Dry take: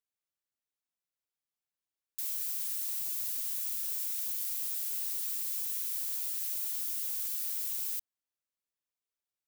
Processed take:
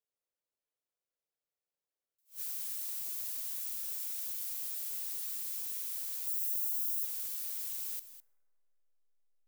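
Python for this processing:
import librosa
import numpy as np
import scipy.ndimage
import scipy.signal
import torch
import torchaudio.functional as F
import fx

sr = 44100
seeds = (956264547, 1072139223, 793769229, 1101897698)

p1 = fx.peak_eq(x, sr, hz=510.0, db=13.0, octaves=1.1)
p2 = fx.backlash(p1, sr, play_db=-45.5)
p3 = p1 + F.gain(torch.from_numpy(p2), -11.0).numpy()
p4 = fx.differentiator(p3, sr, at=(6.27, 7.05))
p5 = p4 + fx.echo_single(p4, sr, ms=206, db=-13.5, dry=0)
p6 = fx.rev_plate(p5, sr, seeds[0], rt60_s=2.4, hf_ratio=0.3, predelay_ms=0, drr_db=20.0)
p7 = fx.attack_slew(p6, sr, db_per_s=260.0)
y = F.gain(torch.from_numpy(p7), -6.0).numpy()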